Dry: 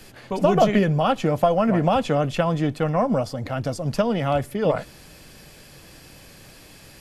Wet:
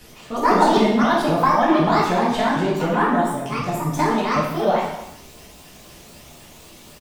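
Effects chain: sawtooth pitch modulation +11 st, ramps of 256 ms; delay 246 ms -16.5 dB; gated-style reverb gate 260 ms falling, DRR -5.5 dB; trim -3 dB

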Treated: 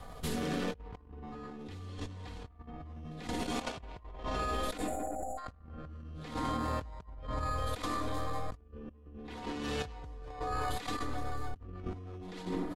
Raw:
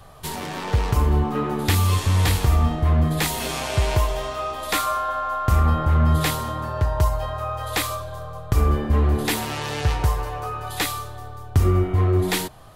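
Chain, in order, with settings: rotary cabinet horn 0.7 Hz, later 6.3 Hz, at 9.95 s; in parallel at -5.5 dB: sample-and-hold 15×; on the sum: treble shelf 8 kHz -3.5 dB; comb 4.1 ms, depth 61%; delay 82 ms -22.5 dB; level held to a coarse grid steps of 13 dB; spectral selection erased 4.78–5.38 s, 840–6700 Hz; low-pass that closes with the level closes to 2.4 kHz, closed at -17.5 dBFS; on a send at -16 dB: peaking EQ 310 Hz +11.5 dB 1.1 oct + reverberation RT60 1.6 s, pre-delay 58 ms; on the sum: compressor with a negative ratio -38 dBFS, ratio -1; trim -4 dB

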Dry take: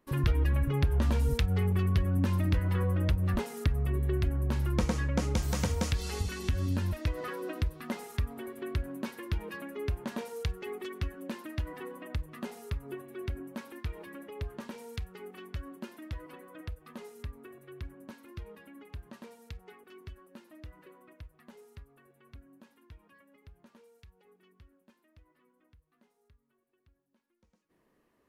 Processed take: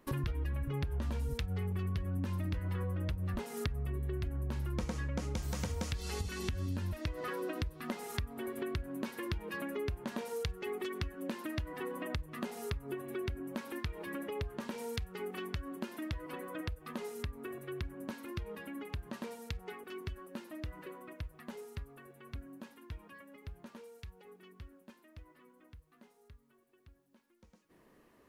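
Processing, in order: compression 4:1, threshold -44 dBFS, peak gain reduction 19 dB; trim +7.5 dB

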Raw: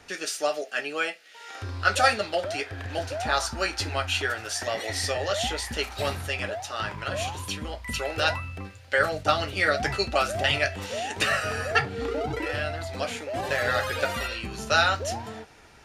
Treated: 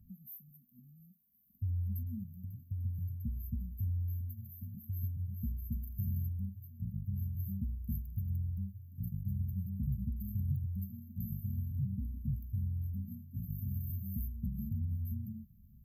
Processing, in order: brick-wall FIR band-stop 240–12000 Hz; treble shelf 11 kHz +5.5 dB; trim +1 dB

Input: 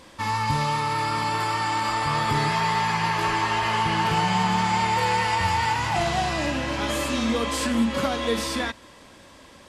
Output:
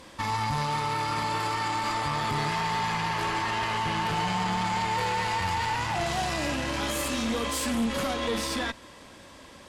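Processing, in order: 6.06–8.14 s: treble shelf 8.2 kHz +10 dB; valve stage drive 20 dB, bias 0.6; peak limiter -23 dBFS, peak gain reduction 6 dB; trim +3 dB

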